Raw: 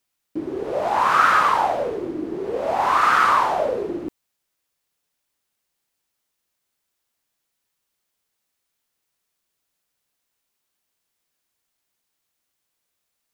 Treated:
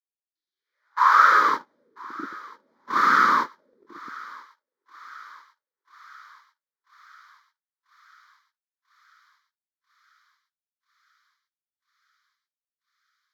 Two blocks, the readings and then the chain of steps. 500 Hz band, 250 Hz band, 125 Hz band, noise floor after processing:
-16.5 dB, -9.5 dB, under -10 dB, under -85 dBFS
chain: static phaser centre 2.7 kHz, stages 6; high-pass sweep 3.8 kHz -> 230 Hz, 0.51–1.62 s; gate -21 dBFS, range -37 dB; on a send: thinning echo 991 ms, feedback 76%, high-pass 1 kHz, level -19.5 dB

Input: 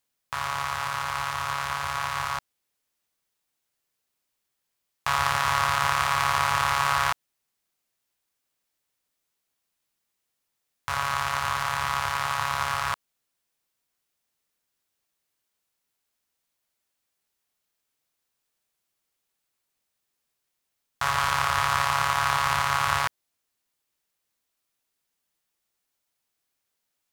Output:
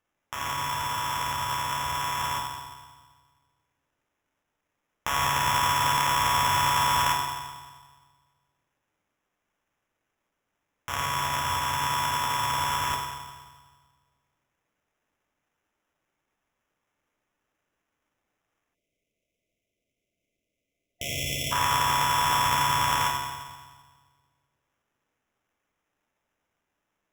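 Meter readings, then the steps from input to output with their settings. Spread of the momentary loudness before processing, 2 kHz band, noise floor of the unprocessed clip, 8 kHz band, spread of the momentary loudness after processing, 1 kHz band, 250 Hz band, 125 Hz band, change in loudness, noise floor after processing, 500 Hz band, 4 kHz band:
8 LU, -3.0 dB, -81 dBFS, +3.0 dB, 14 LU, +0.5 dB, +4.5 dB, +1.0 dB, 0.0 dB, -83 dBFS, -1.0 dB, +2.5 dB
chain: FDN reverb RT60 1.5 s, low-frequency decay 1.3×, high-frequency decay 0.85×, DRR -1.5 dB; sample-rate reducer 4.4 kHz, jitter 0%; spectral selection erased 18.75–21.52 s, 710–2000 Hz; trim -4.5 dB

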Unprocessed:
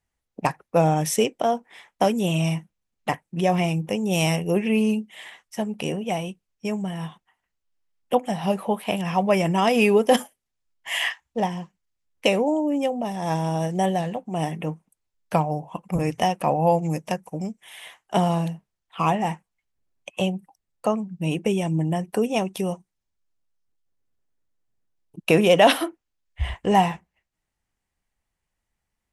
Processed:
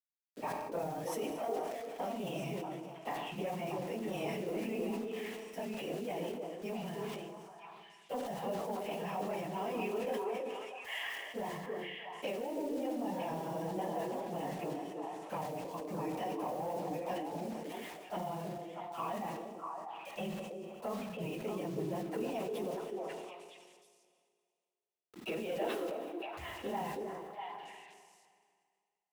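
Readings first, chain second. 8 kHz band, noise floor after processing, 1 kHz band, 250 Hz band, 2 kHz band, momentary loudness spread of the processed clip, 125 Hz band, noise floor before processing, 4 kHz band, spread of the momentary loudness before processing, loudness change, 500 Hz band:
-17.0 dB, -82 dBFS, -14.5 dB, -15.5 dB, -15.0 dB, 7 LU, -19.5 dB, -82 dBFS, -17.0 dB, 13 LU, -16.0 dB, -14.0 dB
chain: phase randomisation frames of 50 ms; high-pass 240 Hz 12 dB/octave; peaking EQ 7.9 kHz -14.5 dB 2 oct; compression 5:1, threshold -29 dBFS, peak gain reduction 17 dB; word length cut 8-bit, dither none; saturation -21 dBFS, distortion -23 dB; on a send: repeats whose band climbs or falls 320 ms, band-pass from 380 Hz, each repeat 1.4 oct, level 0 dB; on the sum: Schroeder reverb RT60 2.2 s, combs from 28 ms, DRR 9.5 dB; decay stretcher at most 31 dB/s; trim -7.5 dB

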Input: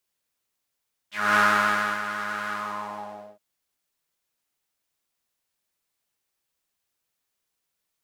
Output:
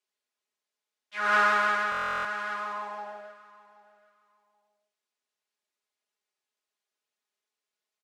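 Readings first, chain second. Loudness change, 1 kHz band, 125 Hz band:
-2.5 dB, -2.0 dB, under -10 dB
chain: high-pass 260 Hz 24 dB/octave; distance through air 53 m; comb 4.8 ms, depth 70%; on a send: feedback delay 779 ms, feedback 19%, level -19.5 dB; on the sum: buffer glitch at 1.90 s, samples 1024, times 14; trim -5.5 dB

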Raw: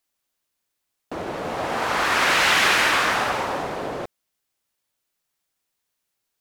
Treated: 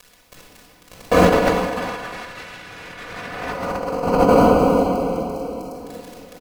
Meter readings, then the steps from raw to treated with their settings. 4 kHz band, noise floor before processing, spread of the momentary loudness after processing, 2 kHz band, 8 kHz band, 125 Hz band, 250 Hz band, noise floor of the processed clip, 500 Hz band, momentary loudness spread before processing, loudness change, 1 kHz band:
-9.0 dB, -79 dBFS, 21 LU, -7.0 dB, -7.0 dB, +13.5 dB, +14.0 dB, -52 dBFS, +11.5 dB, 17 LU, +1.5 dB, +2.5 dB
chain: crackle 18 per s -38 dBFS; comb 4.1 ms, depth 95%; on a send: tape echo 390 ms, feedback 54%, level -6.5 dB, low-pass 1.3 kHz; on the sum: spectral selection erased 3.47–5.73 s, 1.5–4 kHz; in parallel at -10 dB: sample-rate reducer 1.8 kHz, jitter 0%; on the sum: vibrato 4.6 Hz 6.4 cents; simulated room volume 3100 m³, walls mixed, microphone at 5.6 m; compressor with a negative ratio -20 dBFS, ratio -0.5; trim +1 dB

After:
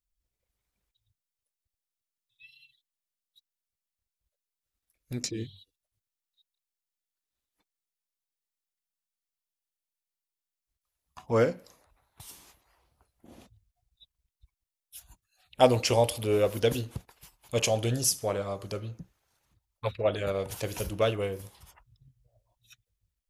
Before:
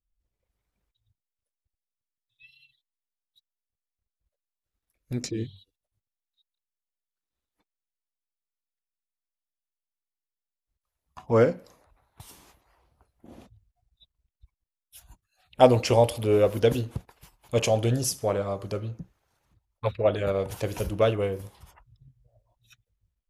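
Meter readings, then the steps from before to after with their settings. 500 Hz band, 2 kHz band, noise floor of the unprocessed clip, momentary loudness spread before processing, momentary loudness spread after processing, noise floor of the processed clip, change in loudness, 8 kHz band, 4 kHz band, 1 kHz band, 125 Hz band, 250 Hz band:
-4.0 dB, -1.0 dB, under -85 dBFS, 15 LU, 19 LU, under -85 dBFS, -3.5 dB, +3.0 dB, +1.5 dB, -3.5 dB, -4.5 dB, -4.5 dB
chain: treble shelf 2.2 kHz +8 dB; trim -4.5 dB

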